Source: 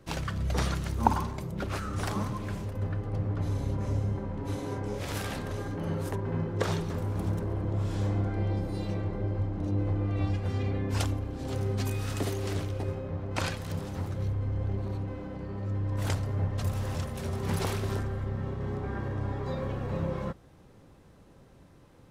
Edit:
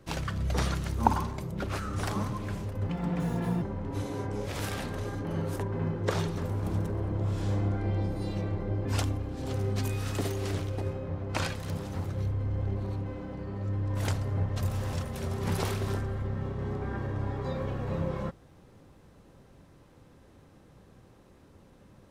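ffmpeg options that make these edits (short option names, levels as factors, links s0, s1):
-filter_complex "[0:a]asplit=4[s0][s1][s2][s3];[s0]atrim=end=2.894[s4];[s1]atrim=start=2.89:end=4.15,asetpts=PTS-STARTPTS,asetrate=75852,aresample=44100[s5];[s2]atrim=start=4.146:end=9.382[s6];[s3]atrim=start=10.868[s7];[s4][s5]acrossfade=d=0.004:c1=hsin:c2=hsin[s8];[s8][s6]acrossfade=d=0.004:c1=hsin:c2=hsin[s9];[s9][s7]acrossfade=d=0.004:c1=hsin:c2=hsin"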